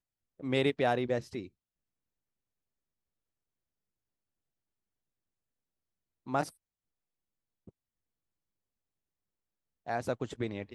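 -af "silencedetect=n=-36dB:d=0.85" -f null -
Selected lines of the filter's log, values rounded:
silence_start: 1.45
silence_end: 6.28 | silence_duration: 4.83
silence_start: 6.49
silence_end: 9.88 | silence_duration: 3.39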